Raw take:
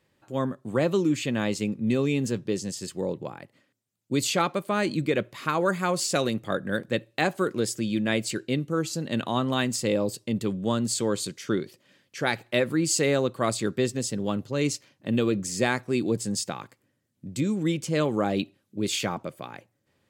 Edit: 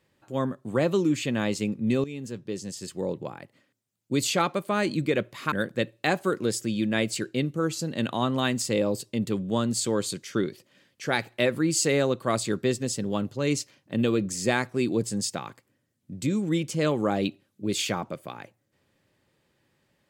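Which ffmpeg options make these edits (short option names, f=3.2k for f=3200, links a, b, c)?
-filter_complex "[0:a]asplit=3[a][b][c];[a]atrim=end=2.04,asetpts=PTS-STARTPTS,afade=t=out:st=2.036:d=0.004:c=hsin:silence=0.199526[d];[b]atrim=start=2.04:end=5.522,asetpts=PTS-STARTPTS,afade=t=in:d=1.1:silence=0.199526[e];[c]atrim=start=6.658[f];[d][e]concat=n=2:v=0:a=1[g];[g][f]acrossfade=d=0.004:c1=hsin:c2=hsin"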